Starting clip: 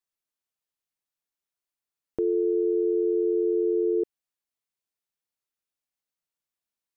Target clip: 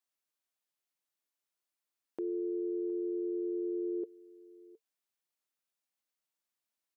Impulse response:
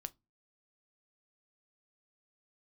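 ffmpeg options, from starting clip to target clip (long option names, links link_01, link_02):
-af "highpass=210,bandreject=frequency=450:width=12,alimiter=level_in=5.5dB:limit=-24dB:level=0:latency=1,volume=-5.5dB,aecho=1:1:715:0.0891"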